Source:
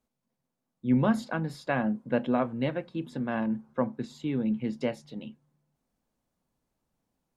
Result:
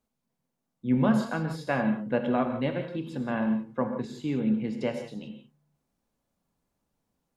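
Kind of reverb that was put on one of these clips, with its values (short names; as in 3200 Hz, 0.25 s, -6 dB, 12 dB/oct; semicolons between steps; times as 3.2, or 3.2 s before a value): non-linear reverb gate 0.2 s flat, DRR 5 dB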